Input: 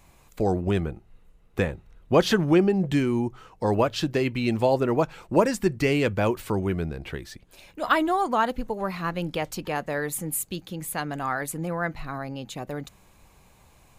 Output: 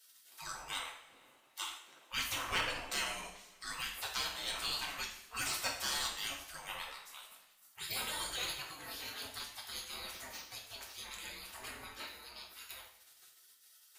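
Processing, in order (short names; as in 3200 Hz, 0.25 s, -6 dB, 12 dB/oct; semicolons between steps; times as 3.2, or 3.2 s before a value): spectral gate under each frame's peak -30 dB weak; two-slope reverb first 0.54 s, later 1.9 s, from -18 dB, DRR -1 dB; one-sided clip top -34.5 dBFS; gain +4 dB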